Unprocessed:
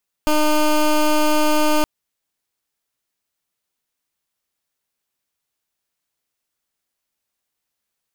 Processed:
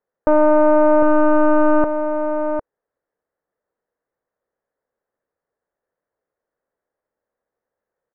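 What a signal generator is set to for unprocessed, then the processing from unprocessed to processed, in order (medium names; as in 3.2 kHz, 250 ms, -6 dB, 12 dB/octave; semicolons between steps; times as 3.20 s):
pulse 304 Hz, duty 16% -15.5 dBFS 1.57 s
elliptic low-pass 1.8 kHz, stop band 60 dB; peaking EQ 500 Hz +14 dB 0.8 oct; delay 754 ms -8 dB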